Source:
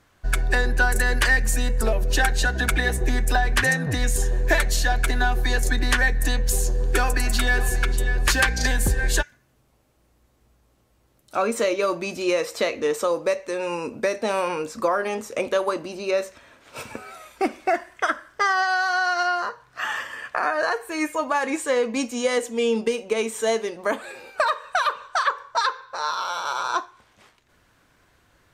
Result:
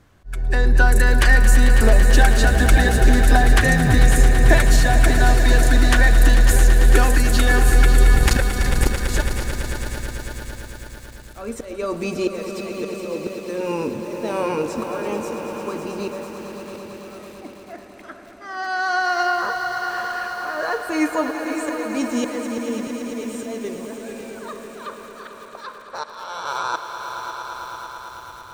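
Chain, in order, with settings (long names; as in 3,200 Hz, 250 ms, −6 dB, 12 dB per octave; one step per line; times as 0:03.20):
0:08.15–0:09.02: sub-harmonics by changed cycles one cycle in 2, muted
0:13.00–0:13.42: tilt shelving filter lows +7 dB, about 1,200 Hz
volume swells 530 ms
low-shelf EQ 450 Hz +9.5 dB
echo that builds up and dies away 111 ms, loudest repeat 5, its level −12 dB
feedback echo at a low word length 546 ms, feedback 55%, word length 6 bits, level −12 dB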